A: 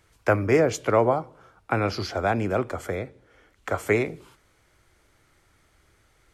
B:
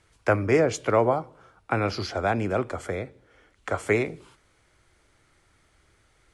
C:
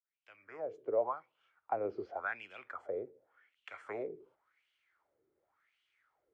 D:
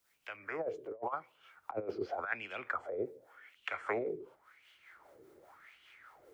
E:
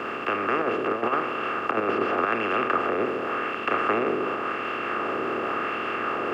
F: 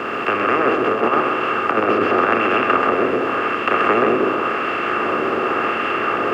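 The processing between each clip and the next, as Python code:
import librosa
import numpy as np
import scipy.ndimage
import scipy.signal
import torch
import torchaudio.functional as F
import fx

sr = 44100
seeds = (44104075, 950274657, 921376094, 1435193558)

y1 = scipy.signal.sosfilt(scipy.signal.cheby1(6, 1.0, 11000.0, 'lowpass', fs=sr, output='sos'), x)
y2 = fx.fade_in_head(y1, sr, length_s=1.46)
y2 = fx.low_shelf(y2, sr, hz=200.0, db=3.5)
y2 = fx.wah_lfo(y2, sr, hz=0.9, low_hz=390.0, high_hz=3000.0, q=5.5)
y2 = y2 * 10.0 ** (-2.5 / 20.0)
y3 = fx.over_compress(y2, sr, threshold_db=-40.0, ratio=-0.5)
y3 = fx.harmonic_tremolo(y3, sr, hz=5.0, depth_pct=50, crossover_hz=450.0)
y3 = fx.band_squash(y3, sr, depth_pct=40)
y3 = y3 * 10.0 ** (7.0 / 20.0)
y4 = fx.bin_compress(y3, sr, power=0.2)
y4 = fx.small_body(y4, sr, hz=(240.0, 1200.0, 2700.0), ring_ms=20, db=12)
y5 = y4 + 10.0 ** (-4.0 / 20.0) * np.pad(y4, (int(131 * sr / 1000.0), 0))[:len(y4)]
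y5 = y5 * 10.0 ** (6.5 / 20.0)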